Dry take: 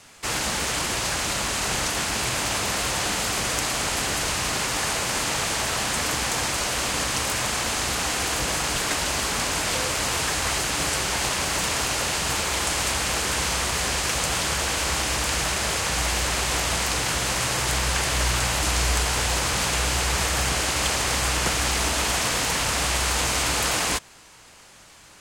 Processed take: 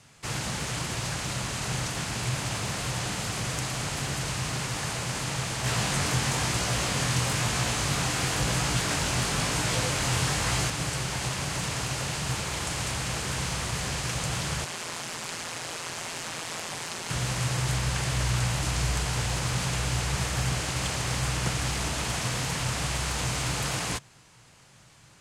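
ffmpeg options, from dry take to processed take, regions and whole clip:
ffmpeg -i in.wav -filter_complex "[0:a]asettb=1/sr,asplit=3[link_01][link_02][link_03];[link_01]atrim=end=5.644[link_04];[link_02]atrim=start=5.64:end=10.7,asetpts=PTS-STARTPTS,afade=type=in:duration=0.004:curve=qsin,afade=type=out:start_time=5.056:duration=0.004:curve=qsin,aeval=exprs='0.299*sin(PI/2*1.58*val(0)/0.299)':channel_layout=same,flanger=delay=16.5:depth=7.1:speed=1[link_05];[link_03]atrim=start=10.696[link_06];[link_04][link_05]acrossfade=duration=0.004:curve1=hsin:curve2=qsin[link_07];[link_07][link_06]acrossfade=duration=0.004:curve1=qsin:curve2=hsin,asettb=1/sr,asplit=3[link_08][link_09][link_10];[link_08]atrim=end=14.644[link_11];[link_09]atrim=start=14.64:end=17.1,asetpts=PTS-STARTPTS,afade=type=in:duration=0.004:curve=qsin,afade=type=out:start_time=2.456:duration=0.004:curve=qsin,highpass=260,aeval=exprs='val(0)*sin(2*PI*84*n/s)':channel_layout=same[link_12];[link_10]atrim=start=17.096[link_13];[link_11][link_12]acrossfade=duration=0.004:curve1=hsin:curve2=qsin[link_14];[link_14][link_13]acrossfade=duration=0.004:curve1=qsin:curve2=hsin,lowpass=12000,equalizer=frequency=130:width=1.5:gain=14.5,volume=-7.5dB" out.wav

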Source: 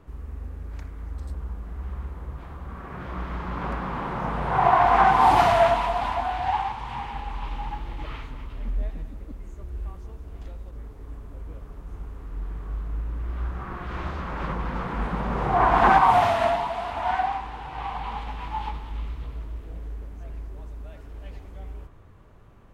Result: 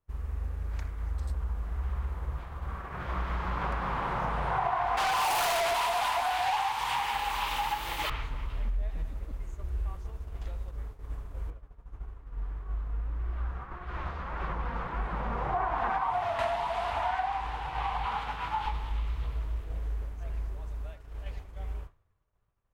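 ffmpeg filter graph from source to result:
ffmpeg -i in.wav -filter_complex "[0:a]asettb=1/sr,asplit=3[link_01][link_02][link_03];[link_01]atrim=end=4.974[link_04];[link_02]atrim=start=4.97:end=8.1,asetpts=PTS-STARTPTS,afade=type=in:duration=0.004:curve=qsin,afade=type=out:start_time=3.126:duration=0.004:curve=qsin,aemphasis=mode=production:type=riaa,acontrast=88,asoftclip=type=hard:threshold=-16dB[link_05];[link_03]atrim=start=8.096[link_06];[link_04][link_05]acrossfade=duration=0.004:curve1=hsin:curve2=qsin[link_07];[link_07][link_06]acrossfade=duration=0.004:curve1=qsin:curve2=hsin,asettb=1/sr,asplit=3[link_08][link_09][link_10];[link_08]atrim=end=11.504[link_11];[link_09]atrim=start=11.5:end=16.39,asetpts=PTS-STARTPTS,afade=type=in:duration=0.004:curve=qsin,afade=type=out:start_time=4.886:duration=0.004:curve=qsin,highshelf=frequency=3600:gain=-9.5,flanger=delay=2.6:depth=1.7:regen=64:speed=1.7:shape=sinusoidal[link_12];[link_10]atrim=start=16.386[link_13];[link_11][link_12]acrossfade=duration=0.004:curve1=hsin:curve2=qsin[link_14];[link_14][link_13]acrossfade=duration=0.004:curve1=qsin:curve2=hsin,asettb=1/sr,asplit=3[link_15][link_16][link_17];[link_15]atrim=end=18.054[link_18];[link_16]atrim=start=18.05:end=18.66,asetpts=PTS-STARTPTS,afade=type=in:duration=0.004:curve=qsin,afade=type=out:start_time=0.606:duration=0.004:curve=qsin,highpass=87,equalizer=frequency=1400:width_type=o:width=0.3:gain=7.5[link_19];[link_17]atrim=start=18.656[link_20];[link_18][link_19]acrossfade=duration=0.004:curve1=hsin:curve2=qsin[link_21];[link_21][link_20]acrossfade=duration=0.004:curve1=qsin:curve2=hsin,equalizer=frequency=250:width=0.91:gain=-9.5,agate=range=-33dB:threshold=-35dB:ratio=3:detection=peak,acompressor=threshold=-31dB:ratio=5,volume=3.5dB" out.wav

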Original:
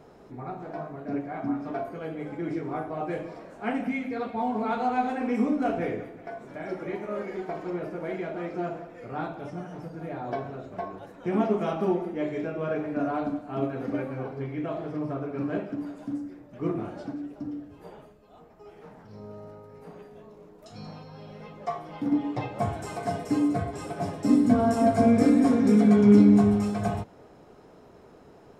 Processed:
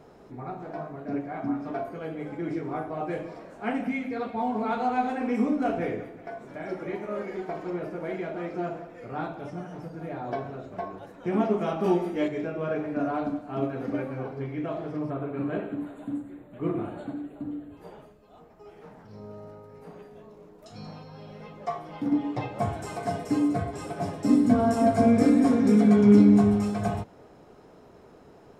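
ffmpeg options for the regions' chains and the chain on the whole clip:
ffmpeg -i in.wav -filter_complex "[0:a]asettb=1/sr,asplit=3[link_01][link_02][link_03];[link_01]atrim=end=11.844[link_04];[link_02]atrim=start=11.84:end=12.28,asetpts=PTS-STARTPTS,afade=type=in:duration=0.004:curve=qsin,afade=type=out:start_time=0.436:duration=0.004:curve=qsin,highshelf=frequency=2400:gain=10,asplit=2[link_05][link_06];[link_06]adelay=17,volume=-4.5dB[link_07];[link_05][link_07]amix=inputs=2:normalize=0,atrim=end_sample=19404[link_08];[link_03]atrim=start=12.276[link_09];[link_04][link_08]acrossfade=duration=0.004:curve1=hsin:curve2=qsin[link_10];[link_10][link_09]acrossfade=duration=0.004:curve1=qsin:curve2=hsin,asettb=1/sr,asplit=3[link_11][link_12][link_13];[link_11]atrim=end=15.104[link_14];[link_12]atrim=start=15.1:end=17.77,asetpts=PTS-STARTPTS,afade=type=in:duration=0.004:curve=qsin,afade=type=out:start_time=2.666:duration=0.004:curve=qsin,asuperstop=centerf=5500:order=12:qfactor=2.1,aecho=1:1:95:0.316,atrim=end_sample=117747[link_15];[link_13]atrim=start=17.766[link_16];[link_14][link_15]acrossfade=duration=0.004:curve1=hsin:curve2=qsin[link_17];[link_17][link_16]acrossfade=duration=0.004:curve1=qsin:curve2=hsin" out.wav

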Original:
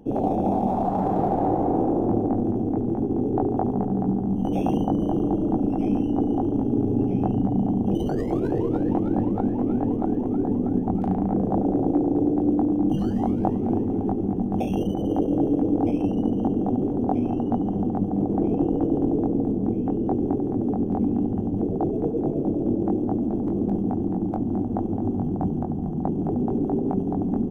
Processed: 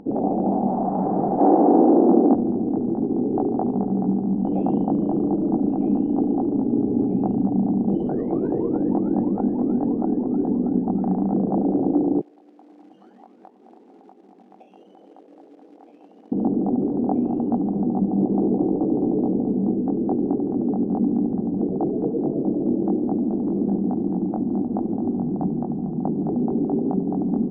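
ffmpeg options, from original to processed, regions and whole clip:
ffmpeg -i in.wav -filter_complex "[0:a]asettb=1/sr,asplit=3[link_01][link_02][link_03];[link_01]atrim=end=1.394[link_04];[link_02]atrim=start=1.39:end=2.35,asetpts=PTS-STARTPTS,afade=type=in:duration=0.004:curve=qsin,afade=type=out:start_time=0.956:duration=0.004:curve=qsin,highpass=frequency=220:width=0.5412,highpass=frequency=220:width=1.3066,acontrast=82[link_05];[link_03]atrim=start=2.346[link_06];[link_04][link_05]acrossfade=duration=0.004:curve1=hsin:curve2=qsin[link_07];[link_07][link_06]acrossfade=duration=0.004:curve1=qsin:curve2=hsin,asettb=1/sr,asplit=3[link_08][link_09][link_10];[link_08]atrim=end=12.214[link_11];[link_09]atrim=start=12.21:end=16.32,asetpts=PTS-STARTPTS,afade=type=in:duration=0.004:curve=qsin,afade=type=out:start_time=4.106:duration=0.004:curve=qsin,highpass=frequency=480:poles=1,acrusher=bits=5:mode=log:mix=0:aa=0.000001,aderivative[link_12];[link_10]atrim=start=16.316[link_13];[link_11][link_12]acrossfade=duration=0.004:curve1=hsin:curve2=qsin[link_14];[link_14][link_13]acrossfade=duration=0.004:curve1=qsin:curve2=hsin,asettb=1/sr,asplit=3[link_15][link_16][link_17];[link_15]atrim=end=17.864[link_18];[link_16]atrim=start=17.86:end=19.78,asetpts=PTS-STARTPTS,afade=type=in:duration=0.004:curve=qsin,afade=type=out:start_time=1.916:duration=0.004:curve=qsin,asuperstop=centerf=2200:order=4:qfactor=0.82,asplit=2[link_19][link_20];[link_20]adelay=16,volume=-6dB[link_21];[link_19][link_21]amix=inputs=2:normalize=0,atrim=end_sample=84672[link_22];[link_17]atrim=start=19.776[link_23];[link_18][link_22]acrossfade=duration=0.004:curve1=hsin:curve2=qsin[link_24];[link_24][link_23]acrossfade=duration=0.004:curve1=qsin:curve2=hsin,lowpass=1100,lowshelf=frequency=130:width_type=q:width=1.5:gain=-11.5,acompressor=mode=upward:threshold=-41dB:ratio=2.5" out.wav

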